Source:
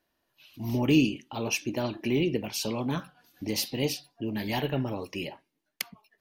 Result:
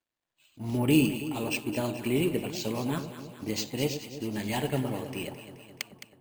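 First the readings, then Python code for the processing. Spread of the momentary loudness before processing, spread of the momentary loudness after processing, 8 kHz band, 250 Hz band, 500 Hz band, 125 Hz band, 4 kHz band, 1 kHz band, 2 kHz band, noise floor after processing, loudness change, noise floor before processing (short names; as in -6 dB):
14 LU, 16 LU, -2.0 dB, -0.5 dB, 0.0 dB, 0.0 dB, -2.5 dB, -0.5 dB, -1.0 dB, under -85 dBFS, -0.5 dB, -79 dBFS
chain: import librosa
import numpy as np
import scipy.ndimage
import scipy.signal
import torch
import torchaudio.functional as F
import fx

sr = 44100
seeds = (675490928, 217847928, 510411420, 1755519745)

y = fx.law_mismatch(x, sr, coded='A')
y = np.repeat(scipy.signal.resample_poly(y, 1, 4), 4)[:len(y)]
y = fx.echo_alternate(y, sr, ms=107, hz=860.0, feedback_pct=77, wet_db=-8.5)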